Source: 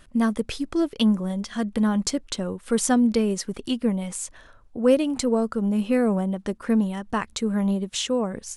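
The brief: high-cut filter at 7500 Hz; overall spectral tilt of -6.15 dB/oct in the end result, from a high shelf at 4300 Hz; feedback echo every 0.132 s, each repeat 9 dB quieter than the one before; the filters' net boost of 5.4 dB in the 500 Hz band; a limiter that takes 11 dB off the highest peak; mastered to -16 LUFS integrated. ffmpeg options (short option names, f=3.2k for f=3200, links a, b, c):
-af "lowpass=7.5k,equalizer=f=500:t=o:g=6,highshelf=f=4.3k:g=-6.5,alimiter=limit=-15dB:level=0:latency=1,aecho=1:1:132|264|396|528:0.355|0.124|0.0435|0.0152,volume=8.5dB"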